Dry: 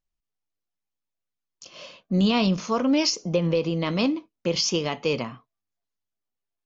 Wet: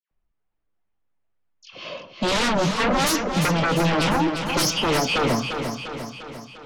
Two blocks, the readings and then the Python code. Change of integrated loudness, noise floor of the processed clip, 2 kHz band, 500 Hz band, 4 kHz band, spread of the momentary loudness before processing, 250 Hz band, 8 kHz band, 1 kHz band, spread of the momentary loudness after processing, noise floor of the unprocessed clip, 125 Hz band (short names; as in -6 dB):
+2.5 dB, -75 dBFS, +9.5 dB, +2.0 dB, +3.5 dB, 11 LU, 0.0 dB, n/a, +9.5 dB, 16 LU, -85 dBFS, +3.0 dB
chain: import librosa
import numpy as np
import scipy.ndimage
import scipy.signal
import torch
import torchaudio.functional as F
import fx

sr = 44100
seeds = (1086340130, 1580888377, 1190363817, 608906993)

y = fx.high_shelf(x, sr, hz=3600.0, db=-7.0)
y = fx.dispersion(y, sr, late='lows', ms=113.0, hz=1700.0)
y = fx.fold_sine(y, sr, drive_db=15, ceiling_db=-10.0)
y = fx.env_lowpass(y, sr, base_hz=2200.0, full_db=-15.0)
y = fx.echo_feedback(y, sr, ms=349, feedback_pct=57, wet_db=-7.0)
y = F.gain(torch.from_numpy(y), -8.0).numpy()